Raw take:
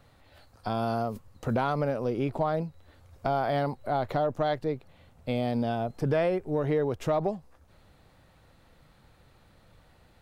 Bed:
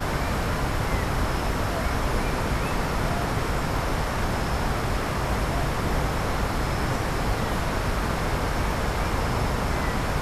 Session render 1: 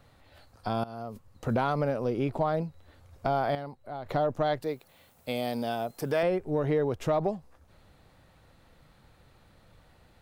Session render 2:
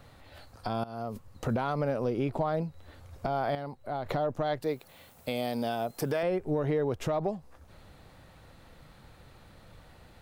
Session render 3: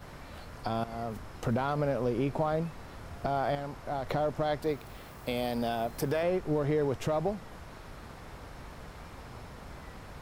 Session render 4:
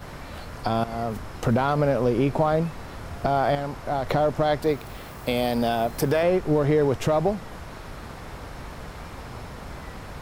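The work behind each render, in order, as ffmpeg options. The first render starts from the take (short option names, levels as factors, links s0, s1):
-filter_complex "[0:a]asettb=1/sr,asplit=3[s0][s1][s2];[s0]atrim=end=4.624[s3];[s1]atrim=start=4.62:end=6.23,asetpts=PTS-STARTPTS,afade=t=in:d=0.004:c=qsin,afade=t=out:st=1.606:d=0.004:c=qsin,aemphasis=mode=production:type=bsi[s4];[s2]atrim=start=6.226[s5];[s3][s4]acrossfade=d=0.004:c1=hsin:c2=qsin[s6];[s6][s5]acrossfade=d=0.004:c1=qsin:c2=hsin,asplit=4[s7][s8][s9][s10];[s7]atrim=end=0.84,asetpts=PTS-STARTPTS,afade=t=out:st=0.836:d=0.004:c=hsin:silence=0.125893[s11];[s8]atrim=start=0.84:end=3.552,asetpts=PTS-STARTPTS,afade=t=in:d=0.67:silence=0.125893[s12];[s9]atrim=start=3.548:end=4.062,asetpts=PTS-STARTPTS,volume=0.299[s13];[s10]atrim=start=4.058[s14];[s11][s12]concat=n=2:v=0:a=1[s15];[s15][s13]acrossfade=d=0.004:c1=hsin:c2=hsin[s16];[s16][s14]acrossfade=d=0.004:c1=hsin:c2=hsin"
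-filter_complex "[0:a]asplit=2[s0][s1];[s1]acompressor=threshold=0.0158:ratio=6,volume=0.794[s2];[s0][s2]amix=inputs=2:normalize=0,alimiter=limit=0.106:level=0:latency=1:release=351"
-filter_complex "[1:a]volume=0.0841[s0];[0:a][s0]amix=inputs=2:normalize=0"
-af "volume=2.51"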